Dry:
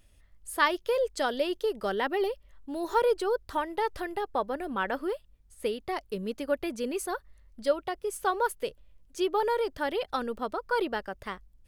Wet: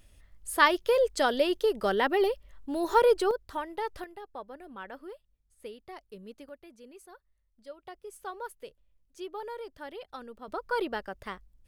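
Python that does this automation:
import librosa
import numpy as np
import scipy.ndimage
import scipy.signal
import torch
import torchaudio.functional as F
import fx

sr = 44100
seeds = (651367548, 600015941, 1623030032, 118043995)

y = fx.gain(x, sr, db=fx.steps((0.0, 3.0), (3.31, -4.5), (4.04, -12.5), (6.49, -19.0), (7.83, -12.0), (10.48, -2.0)))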